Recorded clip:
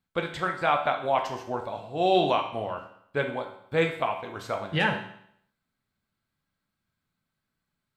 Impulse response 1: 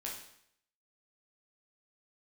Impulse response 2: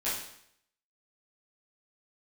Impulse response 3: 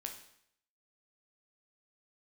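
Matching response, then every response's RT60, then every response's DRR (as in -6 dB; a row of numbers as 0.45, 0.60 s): 3; 0.70, 0.70, 0.70 s; -3.5, -11.0, 3.0 dB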